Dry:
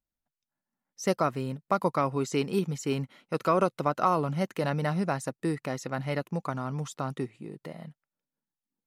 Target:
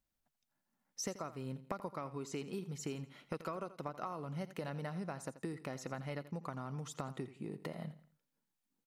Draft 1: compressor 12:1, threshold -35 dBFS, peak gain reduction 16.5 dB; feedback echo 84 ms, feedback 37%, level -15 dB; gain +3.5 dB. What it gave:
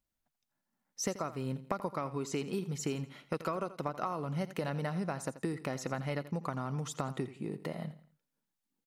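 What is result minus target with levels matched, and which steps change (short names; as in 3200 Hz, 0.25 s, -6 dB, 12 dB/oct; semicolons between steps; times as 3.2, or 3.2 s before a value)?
compressor: peak gain reduction -6.5 dB
change: compressor 12:1, threshold -42 dBFS, peak gain reduction 23 dB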